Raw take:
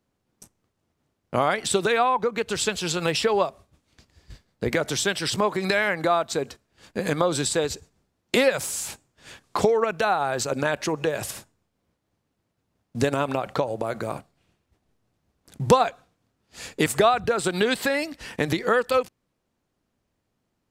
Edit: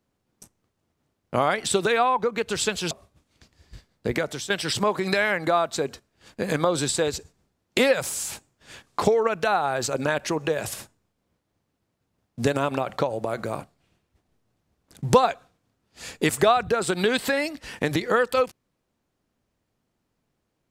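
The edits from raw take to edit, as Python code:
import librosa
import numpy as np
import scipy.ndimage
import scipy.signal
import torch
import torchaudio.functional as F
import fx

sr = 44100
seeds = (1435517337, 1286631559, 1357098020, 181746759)

y = fx.edit(x, sr, fx.cut(start_s=2.91, length_s=0.57),
    fx.fade_out_to(start_s=4.65, length_s=0.42, floor_db=-11.5), tone=tone)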